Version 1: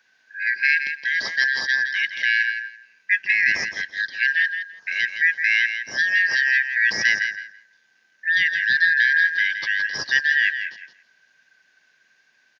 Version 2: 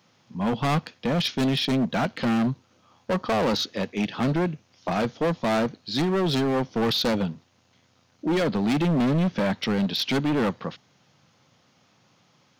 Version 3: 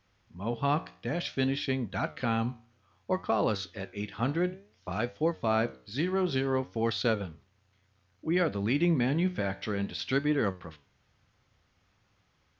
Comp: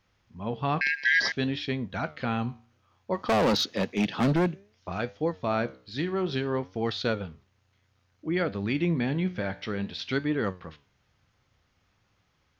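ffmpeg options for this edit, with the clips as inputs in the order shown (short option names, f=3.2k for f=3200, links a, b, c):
-filter_complex "[2:a]asplit=3[a][b][c];[a]atrim=end=0.812[d];[0:a]atrim=start=0.808:end=1.322[e];[b]atrim=start=1.318:end=3.3[f];[1:a]atrim=start=3.14:end=4.62[g];[c]atrim=start=4.46[h];[d][e]acrossfade=d=0.004:c1=hsin:c2=hsin[i];[i][f]acrossfade=d=0.004:c1=hsin:c2=hsin[j];[j][g]acrossfade=d=0.16:c1=tri:c2=tri[k];[k][h]acrossfade=d=0.16:c1=tri:c2=tri"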